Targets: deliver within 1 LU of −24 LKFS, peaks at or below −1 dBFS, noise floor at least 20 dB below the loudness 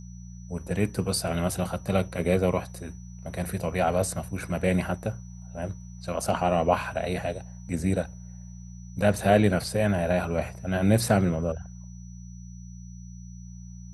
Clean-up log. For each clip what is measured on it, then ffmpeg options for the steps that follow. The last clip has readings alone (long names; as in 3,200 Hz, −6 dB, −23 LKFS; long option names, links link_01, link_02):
mains hum 60 Hz; hum harmonics up to 180 Hz; level of the hum −39 dBFS; interfering tone 5,900 Hz; level of the tone −55 dBFS; integrated loudness −27.0 LKFS; sample peak −6.5 dBFS; target loudness −24.0 LKFS
→ -af "bandreject=frequency=60:width_type=h:width=4,bandreject=frequency=120:width_type=h:width=4,bandreject=frequency=180:width_type=h:width=4"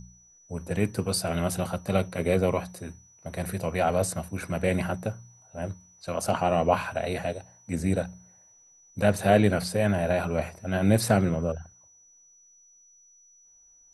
mains hum none found; interfering tone 5,900 Hz; level of the tone −55 dBFS
→ -af "bandreject=frequency=5900:width=30"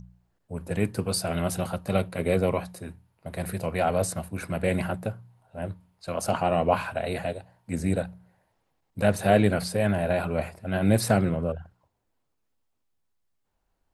interfering tone none found; integrated loudness −27.0 LKFS; sample peak −6.5 dBFS; target loudness −24.0 LKFS
→ -af "volume=3dB"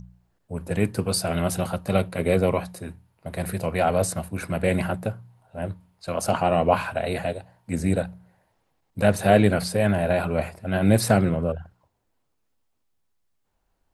integrated loudness −24.0 LKFS; sample peak −3.5 dBFS; background noise floor −73 dBFS